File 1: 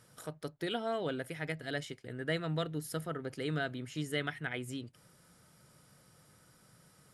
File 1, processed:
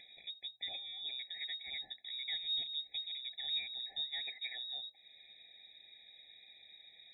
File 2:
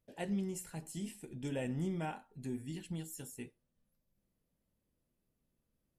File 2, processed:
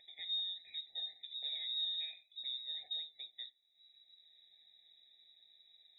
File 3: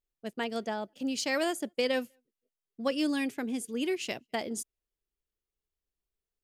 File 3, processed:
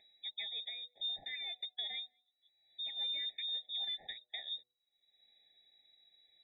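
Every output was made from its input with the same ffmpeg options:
-filter_complex "[0:a]acrossover=split=160[link_01][link_02];[link_02]acompressor=threshold=-52dB:ratio=2[link_03];[link_01][link_03]amix=inputs=2:normalize=0,lowpass=frequency=3300:width_type=q:width=0.5098,lowpass=frequency=3300:width_type=q:width=0.6013,lowpass=frequency=3300:width_type=q:width=0.9,lowpass=frequency=3300:width_type=q:width=2.563,afreqshift=-3900,acompressor=mode=upward:threshold=-53dB:ratio=2.5,bandreject=frequency=122.6:width_type=h:width=4,bandreject=frequency=245.2:width_type=h:width=4,bandreject=frequency=367.8:width_type=h:width=4,bandreject=frequency=490.4:width_type=h:width=4,bandreject=frequency=613:width_type=h:width=4,bandreject=frequency=735.6:width_type=h:width=4,bandreject=frequency=858.2:width_type=h:width=4,bandreject=frequency=980.8:width_type=h:width=4,bandreject=frequency=1103.4:width_type=h:width=4,afftfilt=real='re*eq(mod(floor(b*sr/1024/840),2),0)':imag='im*eq(mod(floor(b*sr/1024/840),2),0)':win_size=1024:overlap=0.75,volume=2.5dB"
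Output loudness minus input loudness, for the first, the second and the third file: −1.5, +1.5, −6.5 LU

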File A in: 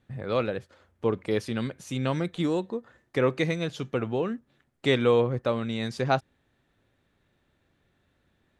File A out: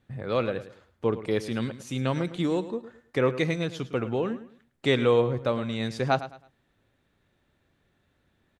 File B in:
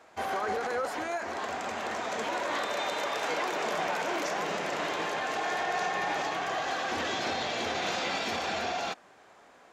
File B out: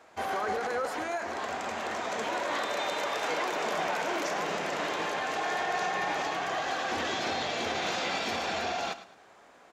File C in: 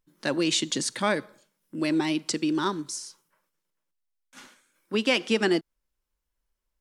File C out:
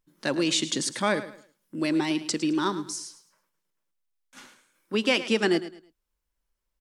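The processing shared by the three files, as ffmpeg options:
-af "aecho=1:1:107|214|321:0.2|0.0559|0.0156"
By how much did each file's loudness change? 0.0, 0.0, 0.0 LU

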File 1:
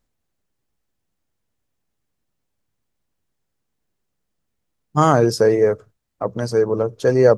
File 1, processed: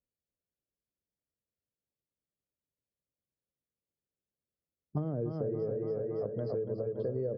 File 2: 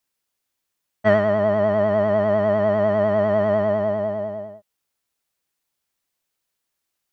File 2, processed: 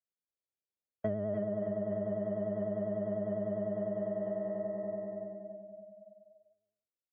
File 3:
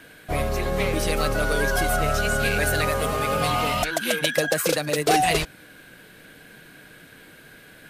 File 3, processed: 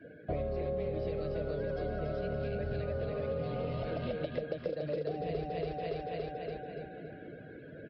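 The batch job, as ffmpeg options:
-filter_complex "[0:a]aecho=1:1:283|566|849|1132|1415|1698|1981|2264:0.668|0.368|0.202|0.111|0.0612|0.0336|0.0185|0.0102,acrossover=split=360[link_01][link_02];[link_02]acompressor=threshold=-24dB:ratio=10[link_03];[link_01][link_03]amix=inputs=2:normalize=0,highpass=48,afftdn=noise_reduction=20:noise_floor=-47,firequalizer=gain_entry='entry(280,0);entry(560,5);entry(860,-12)':delay=0.05:min_phase=1,acompressor=threshold=-35dB:ratio=5,aresample=11025,aresample=44100,adynamicequalizer=threshold=0.00282:dfrequency=290:dqfactor=2.4:tfrequency=290:tqfactor=2.4:attack=5:release=100:ratio=0.375:range=2:mode=cutabove:tftype=bell,volume=2dB"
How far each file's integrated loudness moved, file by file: −17.0, −16.0, −14.0 LU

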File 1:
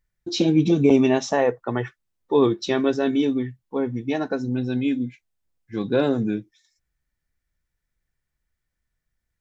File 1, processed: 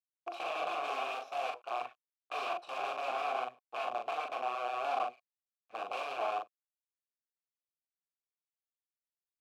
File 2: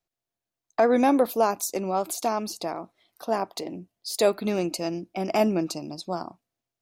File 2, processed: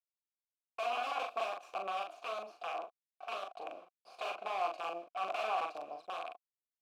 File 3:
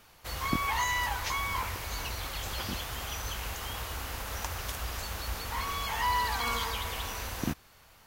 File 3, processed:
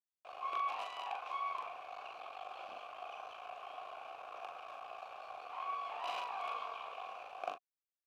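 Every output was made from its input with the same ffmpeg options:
-filter_complex "[0:a]highshelf=frequency=5100:gain=-11,acrusher=bits=5:dc=4:mix=0:aa=0.000001,aeval=exprs='(mod(13.3*val(0)+1,2)-1)/13.3':channel_layout=same,asplit=3[link_01][link_02][link_03];[link_01]bandpass=frequency=730:width_type=q:width=8,volume=0dB[link_04];[link_02]bandpass=frequency=1090:width_type=q:width=8,volume=-6dB[link_05];[link_03]bandpass=frequency=2440:width_type=q:width=8,volume=-9dB[link_06];[link_04][link_05][link_06]amix=inputs=3:normalize=0,bass=frequency=250:gain=-14,treble=frequency=4000:gain=-4,asplit=2[link_07][link_08];[link_08]adelay=41,volume=-4.5dB[link_09];[link_07][link_09]amix=inputs=2:normalize=0,volume=6dB"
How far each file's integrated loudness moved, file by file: −14.5, −13.0, −10.5 LU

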